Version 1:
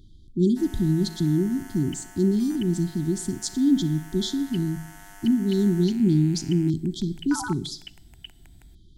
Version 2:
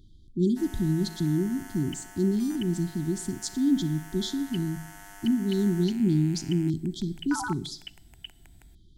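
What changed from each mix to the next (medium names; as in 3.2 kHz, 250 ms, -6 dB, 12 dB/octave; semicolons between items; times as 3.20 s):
speech -3.5 dB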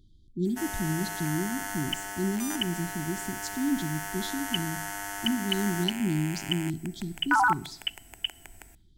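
speech -4.5 dB; background +11.5 dB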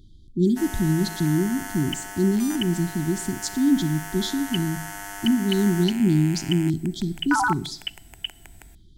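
speech +8.5 dB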